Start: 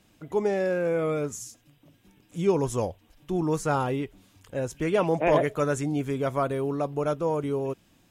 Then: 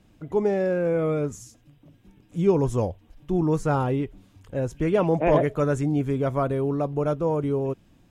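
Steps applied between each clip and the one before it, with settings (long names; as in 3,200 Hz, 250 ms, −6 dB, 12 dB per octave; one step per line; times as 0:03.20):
spectral tilt −2 dB per octave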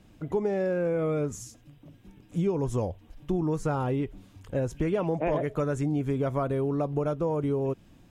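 downward compressor, threshold −26 dBFS, peak gain reduction 11.5 dB
level +2 dB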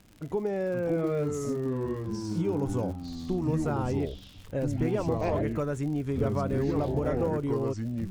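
delay with pitch and tempo change per echo 470 ms, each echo −4 semitones, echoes 3
surface crackle 100 per second −37 dBFS
level −2.5 dB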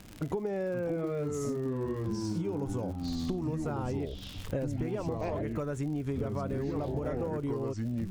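downward compressor 12 to 1, threshold −37 dBFS, peak gain reduction 15 dB
level +7.5 dB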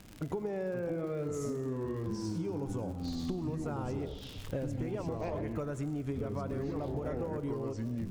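convolution reverb RT60 1.4 s, pre-delay 85 ms, DRR 12 dB
level −3 dB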